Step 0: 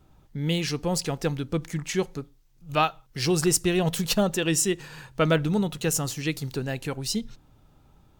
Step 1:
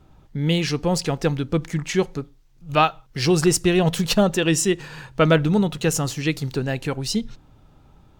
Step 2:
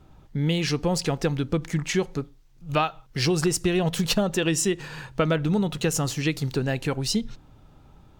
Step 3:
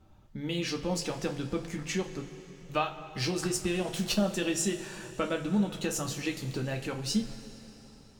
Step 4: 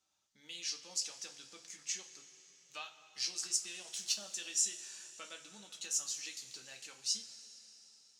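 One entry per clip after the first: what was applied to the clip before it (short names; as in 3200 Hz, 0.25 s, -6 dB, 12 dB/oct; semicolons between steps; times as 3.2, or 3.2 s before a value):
high shelf 7700 Hz -9.5 dB; gain +5.5 dB
compressor, threshold -19 dBFS, peak gain reduction 8 dB
two-slope reverb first 0.21 s, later 3.7 s, from -20 dB, DRR 2 dB; gain -8.5 dB
band-pass 6300 Hz, Q 2; gain +3 dB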